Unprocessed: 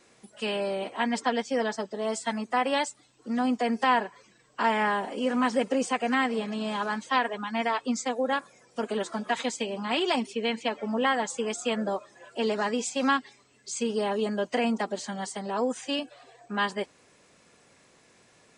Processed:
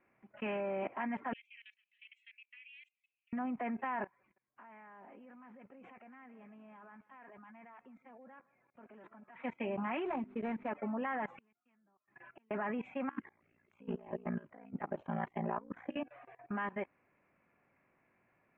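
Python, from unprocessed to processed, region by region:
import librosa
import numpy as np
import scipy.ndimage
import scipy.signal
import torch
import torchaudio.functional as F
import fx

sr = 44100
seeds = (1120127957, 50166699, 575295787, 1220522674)

y = fx.chain(x, sr, fx.cheby1_highpass(hz=2500.0, order=5),
    fx.band_squash(depth_pct=40), at=(1.33, 3.33))
y = fx.chain(y, sr, fx.level_steps(step_db=20),
    fx.echo_feedback(ms=157, feedback_pct=20, wet_db=-21.5), at=(4.04, 9.36))
y = fx.chain(y, sr, fx.median_filter(points=15),
    fx.high_shelf_res(hz=3300.0, db=12.0, q=1.5),
    fx.hum_notches(base_hz=50, count=8), at=(10.05, 10.69))
y = fx.chain(y, sr, fx.peak_eq(hz=550.0, db=-13.5, octaves=0.79),
    fx.gate_flip(shuts_db=-34.0, range_db=-37), at=(11.36, 12.51))
y = fx.chain(y, sr, fx.ring_mod(carrier_hz=29.0),
    fx.over_compress(threshold_db=-35.0, ratio=-1.0),
    fx.filter_held_notch(hz=6.4, low_hz=730.0, high_hz=7200.0), at=(13.09, 15.97))
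y = scipy.signal.sosfilt(scipy.signal.ellip(4, 1.0, 50, 2400.0, 'lowpass', fs=sr, output='sos'), y)
y = fx.peak_eq(y, sr, hz=460.0, db=-8.5, octaves=0.26)
y = fx.level_steps(y, sr, step_db=19)
y = y * 10.0 ** (1.5 / 20.0)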